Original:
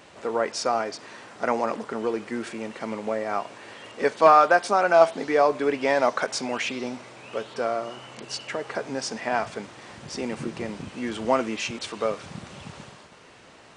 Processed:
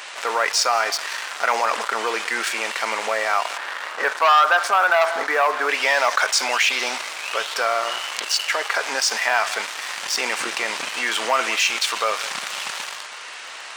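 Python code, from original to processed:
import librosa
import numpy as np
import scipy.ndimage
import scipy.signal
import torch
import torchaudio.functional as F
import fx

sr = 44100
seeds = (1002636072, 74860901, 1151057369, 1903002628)

y = fx.high_shelf_res(x, sr, hz=2100.0, db=-11.0, q=1.5, at=(3.57, 5.69))
y = y + 10.0 ** (-21.5 / 20.0) * np.pad(y, (int(183 * sr / 1000.0), 0))[:len(y)]
y = fx.leveller(y, sr, passes=2)
y = scipy.signal.sosfilt(scipy.signal.butter(2, 1200.0, 'highpass', fs=sr, output='sos'), y)
y = fx.env_flatten(y, sr, amount_pct=50)
y = F.gain(torch.from_numpy(y), -1.5).numpy()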